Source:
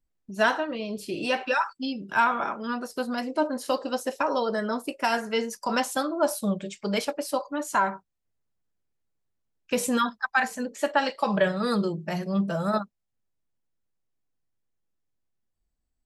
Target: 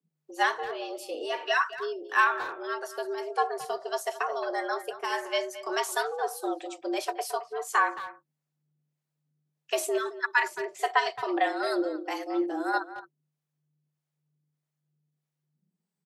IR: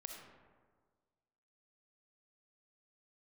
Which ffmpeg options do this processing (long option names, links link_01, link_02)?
-filter_complex "[0:a]afreqshift=150,acrossover=split=490[link_01][link_02];[link_01]aeval=exprs='val(0)*(1-0.7/2+0.7/2*cos(2*PI*1.6*n/s))':channel_layout=same[link_03];[link_02]aeval=exprs='val(0)*(1-0.7/2-0.7/2*cos(2*PI*1.6*n/s))':channel_layout=same[link_04];[link_03][link_04]amix=inputs=2:normalize=0,asplit=2[link_05][link_06];[link_06]adelay=220,highpass=300,lowpass=3400,asoftclip=type=hard:threshold=-19.5dB,volume=-13dB[link_07];[link_05][link_07]amix=inputs=2:normalize=0"